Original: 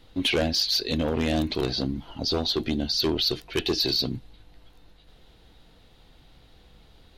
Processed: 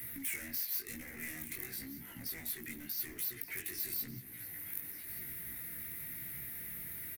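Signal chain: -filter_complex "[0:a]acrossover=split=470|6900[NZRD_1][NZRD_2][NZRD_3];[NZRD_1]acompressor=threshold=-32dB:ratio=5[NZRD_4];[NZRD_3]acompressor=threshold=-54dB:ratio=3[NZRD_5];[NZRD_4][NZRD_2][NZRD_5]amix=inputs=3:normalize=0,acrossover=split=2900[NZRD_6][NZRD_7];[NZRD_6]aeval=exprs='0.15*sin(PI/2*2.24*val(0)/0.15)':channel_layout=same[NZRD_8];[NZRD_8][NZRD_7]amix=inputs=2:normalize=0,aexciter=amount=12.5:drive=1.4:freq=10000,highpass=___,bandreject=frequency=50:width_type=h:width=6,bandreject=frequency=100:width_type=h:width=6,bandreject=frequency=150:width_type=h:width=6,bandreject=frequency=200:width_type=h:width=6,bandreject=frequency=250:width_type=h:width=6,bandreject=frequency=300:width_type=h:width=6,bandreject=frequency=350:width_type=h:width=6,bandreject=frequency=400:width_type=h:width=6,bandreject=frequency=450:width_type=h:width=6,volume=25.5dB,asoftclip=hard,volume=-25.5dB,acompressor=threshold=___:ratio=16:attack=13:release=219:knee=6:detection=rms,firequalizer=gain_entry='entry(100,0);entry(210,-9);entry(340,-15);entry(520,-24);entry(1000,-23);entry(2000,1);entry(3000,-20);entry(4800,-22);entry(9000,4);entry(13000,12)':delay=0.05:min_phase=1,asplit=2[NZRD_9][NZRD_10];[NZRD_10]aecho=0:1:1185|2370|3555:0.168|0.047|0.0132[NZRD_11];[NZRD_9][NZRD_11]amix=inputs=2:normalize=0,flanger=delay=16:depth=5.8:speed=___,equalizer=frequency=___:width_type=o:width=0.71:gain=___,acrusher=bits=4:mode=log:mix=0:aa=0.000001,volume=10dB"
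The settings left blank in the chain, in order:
220, -42dB, 0.94, 5700, 13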